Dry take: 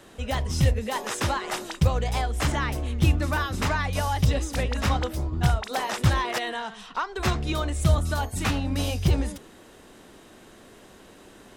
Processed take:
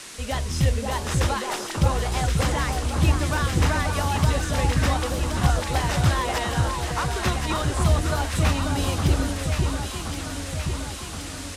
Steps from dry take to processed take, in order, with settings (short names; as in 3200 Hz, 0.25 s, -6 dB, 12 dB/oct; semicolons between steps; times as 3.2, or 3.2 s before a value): band noise 980–9800 Hz -41 dBFS; echo with dull and thin repeats by turns 0.536 s, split 1400 Hz, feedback 78%, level -3 dB; downsampling 32000 Hz